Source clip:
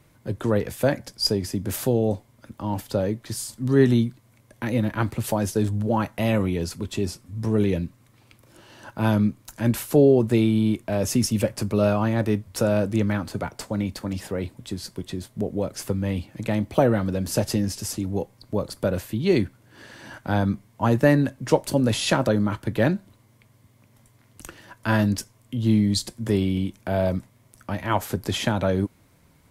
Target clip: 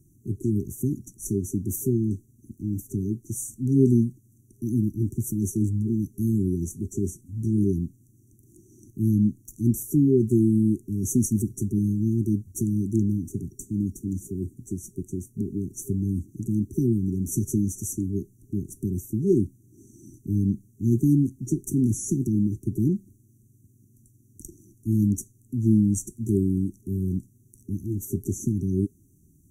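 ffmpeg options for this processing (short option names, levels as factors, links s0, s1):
-af "afftfilt=real='re*(1-between(b*sr/4096,400,5700))':imag='im*(1-between(b*sr/4096,400,5700))':win_size=4096:overlap=0.75"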